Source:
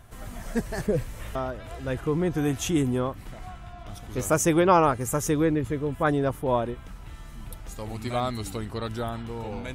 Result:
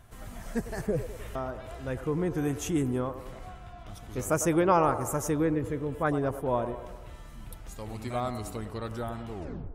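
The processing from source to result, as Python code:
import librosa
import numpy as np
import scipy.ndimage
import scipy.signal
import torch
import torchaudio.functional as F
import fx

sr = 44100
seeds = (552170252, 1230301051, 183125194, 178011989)

y = fx.tape_stop_end(x, sr, length_s=0.45)
y = fx.echo_wet_bandpass(y, sr, ms=102, feedback_pct=60, hz=670.0, wet_db=-10.5)
y = fx.dynamic_eq(y, sr, hz=3600.0, q=1.6, threshold_db=-49.0, ratio=4.0, max_db=-6)
y = F.gain(torch.from_numpy(y), -4.0).numpy()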